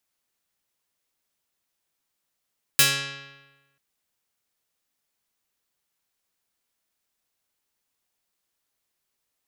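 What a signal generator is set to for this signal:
Karplus-Strong string C#3, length 0.99 s, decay 1.18 s, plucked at 0.45, medium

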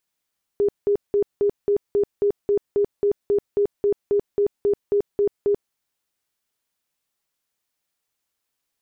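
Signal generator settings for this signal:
tone bursts 407 Hz, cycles 35, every 0.27 s, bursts 19, −15.5 dBFS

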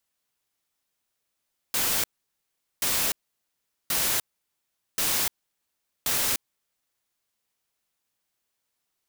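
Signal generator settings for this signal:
noise bursts white, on 0.30 s, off 0.78 s, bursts 5, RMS −25 dBFS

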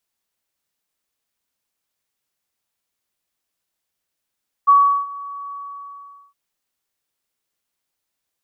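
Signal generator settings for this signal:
note with an ADSR envelope sine 1,130 Hz, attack 20 ms, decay 370 ms, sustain −21.5 dB, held 0.85 s, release 815 ms −7 dBFS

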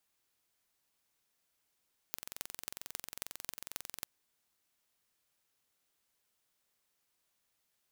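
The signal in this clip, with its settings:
impulse train 22.2 per second, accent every 6, −9.5 dBFS 1.91 s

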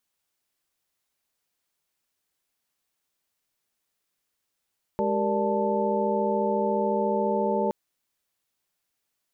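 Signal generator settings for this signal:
held notes G#3/G4/A#4/D5/A5 sine, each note −28.5 dBFS 2.72 s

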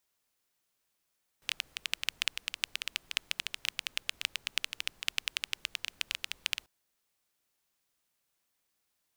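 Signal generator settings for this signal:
rain-like ticks over hiss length 5.24 s, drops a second 11, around 2,800 Hz, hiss −25 dB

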